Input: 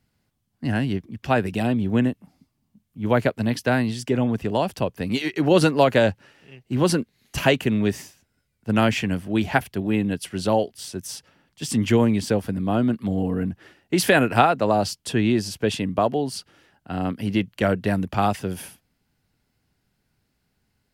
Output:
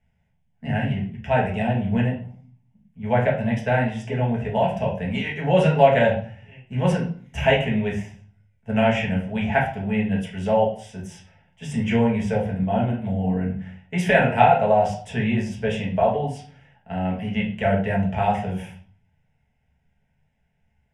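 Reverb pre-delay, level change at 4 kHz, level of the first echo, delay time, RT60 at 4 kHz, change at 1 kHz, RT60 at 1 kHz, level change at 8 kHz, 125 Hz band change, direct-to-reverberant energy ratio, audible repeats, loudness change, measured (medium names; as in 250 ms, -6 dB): 5 ms, -4.5 dB, no echo, no echo, 0.40 s, +2.5 dB, 0.50 s, under -10 dB, +2.0 dB, -3.5 dB, no echo, +0.5 dB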